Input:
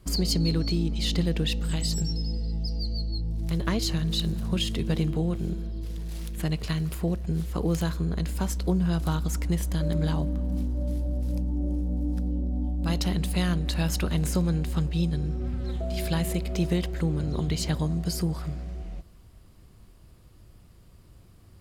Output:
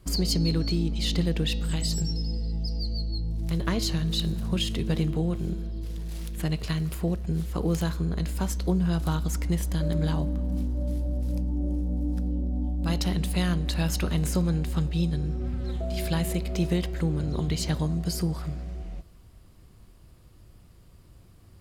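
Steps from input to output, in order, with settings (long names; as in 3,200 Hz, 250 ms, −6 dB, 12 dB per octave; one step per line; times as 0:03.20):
hum removal 212.3 Hz, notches 30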